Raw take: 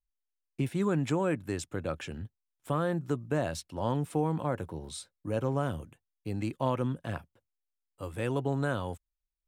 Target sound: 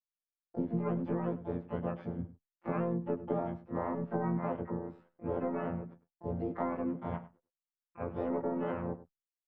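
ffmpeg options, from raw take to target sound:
ffmpeg -i in.wav -filter_complex "[0:a]lowshelf=frequency=120:width_type=q:width=1.5:gain=-7.5,asplit=2[link_01][link_02];[link_02]asoftclip=type=tanh:threshold=-27dB,volume=-8dB[link_03];[link_01][link_03]amix=inputs=2:normalize=0,agate=range=-33dB:threshold=-50dB:ratio=3:detection=peak,afftfilt=real='hypot(re,im)*cos(PI*b)':imag='0':win_size=2048:overlap=0.75,lowpass=frequency=1100:width=0.5412,lowpass=frequency=1100:width=1.3066,acompressor=threshold=-33dB:ratio=12,asplit=4[link_04][link_05][link_06][link_07];[link_05]asetrate=33038,aresample=44100,atempo=1.33484,volume=-14dB[link_08];[link_06]asetrate=58866,aresample=44100,atempo=0.749154,volume=-6dB[link_09];[link_07]asetrate=88200,aresample=44100,atempo=0.5,volume=-12dB[link_10];[link_04][link_08][link_09][link_10]amix=inputs=4:normalize=0,asplit=2[link_11][link_12];[link_12]adelay=99.13,volume=-16dB,highshelf=frequency=4000:gain=-2.23[link_13];[link_11][link_13]amix=inputs=2:normalize=0,volume=3dB" out.wav

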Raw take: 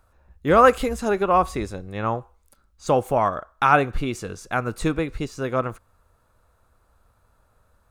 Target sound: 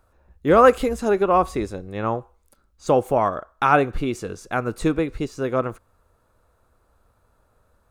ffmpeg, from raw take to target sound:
ffmpeg -i in.wav -af "equalizer=frequency=370:width=0.85:gain=5,volume=-1.5dB" out.wav

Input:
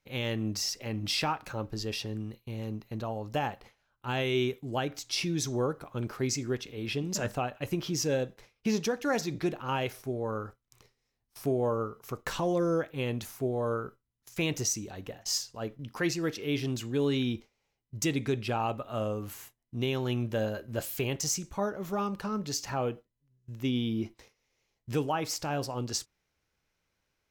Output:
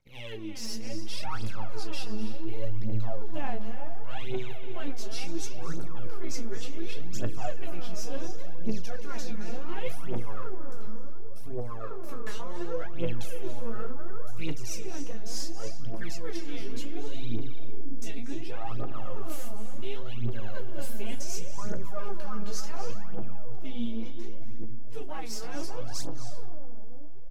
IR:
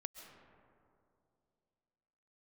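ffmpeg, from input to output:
-filter_complex "[0:a]aeval=exprs='if(lt(val(0),0),0.447*val(0),val(0))':channel_layout=same,areverse,acompressor=threshold=-40dB:ratio=6,areverse,aecho=1:1:18|34:0.631|0.376[link_01];[1:a]atrim=start_sample=2205,asetrate=22932,aresample=44100[link_02];[link_01][link_02]afir=irnorm=-1:irlink=0,aphaser=in_gain=1:out_gain=1:delay=4.9:decay=0.73:speed=0.69:type=triangular"

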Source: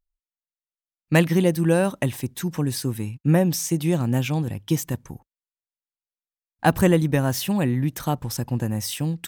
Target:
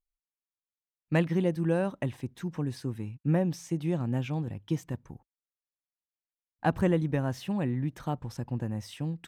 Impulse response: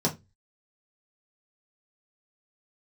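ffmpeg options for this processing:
-af "aemphasis=mode=reproduction:type=75fm,volume=-8.5dB"

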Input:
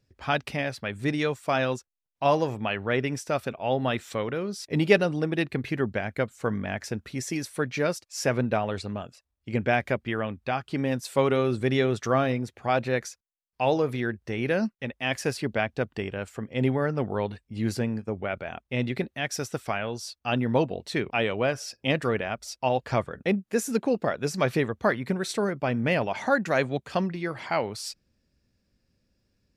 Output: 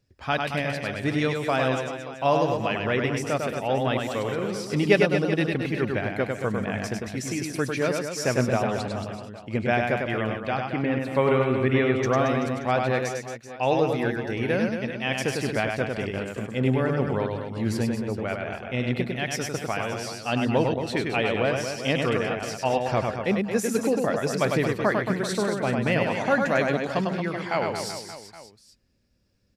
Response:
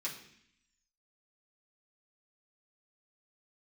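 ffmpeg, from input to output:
-filter_complex "[0:a]asettb=1/sr,asplit=3[link_01][link_02][link_03];[link_01]atrim=end=10.604[link_04];[link_02]atrim=start=10.6:end=11.99,asetpts=PTS-STARTPTS,afade=type=in:duration=0.004:curve=qsin,afade=type=out:start_time=1.386:duration=0.004:curve=qsin,highshelf=frequency=3600:width_type=q:width=1.5:gain=-14[link_05];[link_03]atrim=start=11.986[link_06];[link_04][link_05]acrossfade=duration=0.004:curve1=hsin:curve2=qsin[link_07];[link_07][link_06]acrossfade=duration=0.004:curve1=qsin:curve2=hsin,aecho=1:1:100|225|381.2|576.6|820.7:0.631|0.398|0.251|0.158|0.1"

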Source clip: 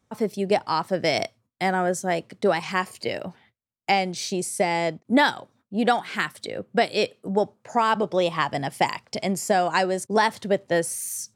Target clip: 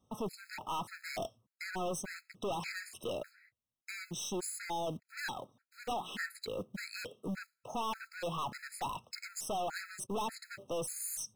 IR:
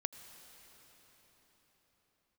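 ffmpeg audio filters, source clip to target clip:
-af "aeval=exprs='(tanh(31.6*val(0)+0.1)-tanh(0.1))/31.6':channel_layout=same,acrusher=bits=5:mode=log:mix=0:aa=0.000001,afftfilt=real='re*gt(sin(2*PI*1.7*pts/sr)*(1-2*mod(floor(b*sr/1024/1300),2)),0)':imag='im*gt(sin(2*PI*1.7*pts/sr)*(1-2*mod(floor(b*sr/1024/1300),2)),0)':win_size=1024:overlap=0.75,volume=-2.5dB"

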